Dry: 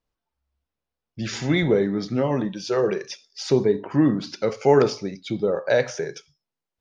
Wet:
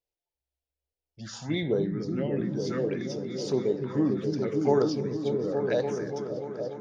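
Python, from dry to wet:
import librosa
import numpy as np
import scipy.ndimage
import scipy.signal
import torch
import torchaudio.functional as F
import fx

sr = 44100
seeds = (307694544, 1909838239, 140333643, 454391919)

p1 = fx.env_phaser(x, sr, low_hz=210.0, high_hz=2400.0, full_db=-14.0)
p2 = fx.low_shelf(p1, sr, hz=88.0, db=-11.5)
p3 = p2 + fx.echo_opening(p2, sr, ms=290, hz=200, octaves=1, feedback_pct=70, wet_db=0, dry=0)
y = p3 * librosa.db_to_amplitude(-6.0)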